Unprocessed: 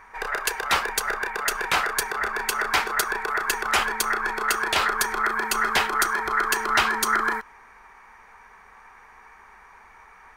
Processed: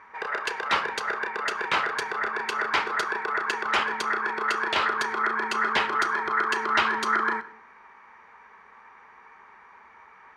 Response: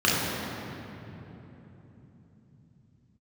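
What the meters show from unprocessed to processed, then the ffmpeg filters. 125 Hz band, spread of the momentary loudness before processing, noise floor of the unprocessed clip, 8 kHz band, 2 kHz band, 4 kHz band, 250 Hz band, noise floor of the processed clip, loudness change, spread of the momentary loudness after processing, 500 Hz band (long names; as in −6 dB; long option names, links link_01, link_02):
can't be measured, 5 LU, −51 dBFS, −13.5 dB, −2.0 dB, −3.5 dB, −0.5 dB, −52 dBFS, −2.5 dB, 5 LU, −1.0 dB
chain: -filter_complex "[0:a]highpass=120,lowpass=3800,bandreject=frequency=740:width=14,asplit=2[link_01][link_02];[1:a]atrim=start_sample=2205,afade=type=out:start_time=0.25:duration=0.01,atrim=end_sample=11466[link_03];[link_02][link_03]afir=irnorm=-1:irlink=0,volume=-30.5dB[link_04];[link_01][link_04]amix=inputs=2:normalize=0,volume=-1.5dB"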